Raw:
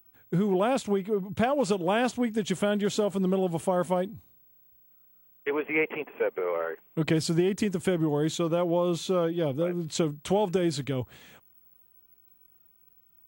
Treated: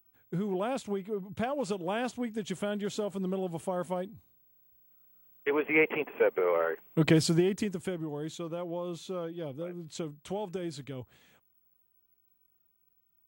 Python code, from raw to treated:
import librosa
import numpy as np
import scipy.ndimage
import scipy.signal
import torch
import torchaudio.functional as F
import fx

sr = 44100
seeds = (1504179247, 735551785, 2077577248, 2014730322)

y = fx.gain(x, sr, db=fx.line((4.13, -7.0), (5.9, 2.0), (7.19, 2.0), (8.03, -10.5)))